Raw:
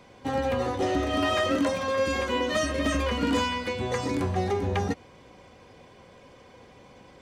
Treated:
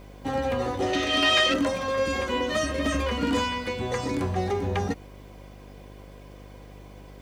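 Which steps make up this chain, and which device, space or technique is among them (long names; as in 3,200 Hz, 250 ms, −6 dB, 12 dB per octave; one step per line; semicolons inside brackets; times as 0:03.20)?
0:00.93–0:01.54: meter weighting curve D
video cassette with head-switching buzz (hum with harmonics 50 Hz, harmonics 14, −46 dBFS −5 dB per octave; white noise bed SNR 40 dB)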